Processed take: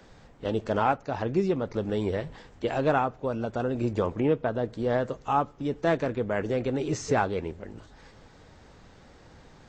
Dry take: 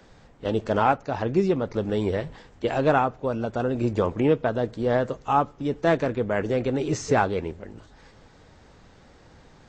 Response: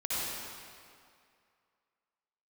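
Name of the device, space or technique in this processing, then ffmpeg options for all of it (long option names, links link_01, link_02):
parallel compression: -filter_complex "[0:a]asplit=2[link_01][link_02];[link_02]acompressor=threshold=-34dB:ratio=6,volume=-4dB[link_03];[link_01][link_03]amix=inputs=2:normalize=0,asettb=1/sr,asplit=3[link_04][link_05][link_06];[link_04]atrim=end=4.194[link_07];[link_05]atrim=start=4.19:end=4.71,asetpts=PTS-STARTPTS,afade=type=in:duration=0.004:curve=qsin,afade=type=out:start_time=0.516:duration=0.004:curve=qsin,highshelf=frequency=3800:gain=-6.5[link_08];[link_06]atrim=start=4.706[link_09];[link_07][link_08]acrossfade=duration=0.004:curve1=hsin:curve2=qsin[link_10];[link_10][link_09]acrossfade=duration=0.004:curve1=qsin:curve2=hsin,volume=-4.5dB"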